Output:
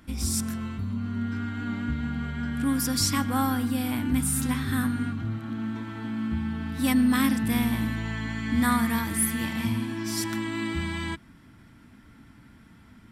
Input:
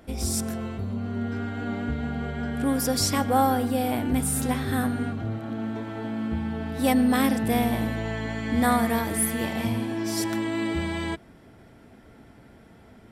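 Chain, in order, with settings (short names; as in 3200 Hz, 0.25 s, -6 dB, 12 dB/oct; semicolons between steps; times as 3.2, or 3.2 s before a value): band shelf 540 Hz -13 dB 1.3 oct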